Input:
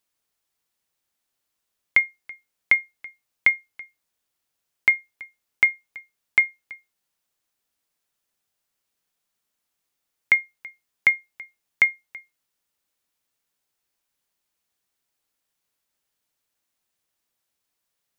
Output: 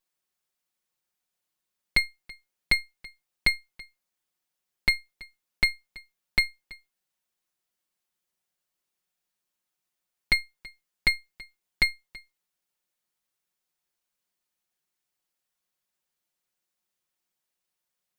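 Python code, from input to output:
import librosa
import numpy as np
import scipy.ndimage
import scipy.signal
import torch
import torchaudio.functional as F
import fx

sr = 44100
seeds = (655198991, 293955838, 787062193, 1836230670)

y = fx.lower_of_two(x, sr, delay_ms=5.5)
y = F.gain(torch.from_numpy(y), -3.0).numpy()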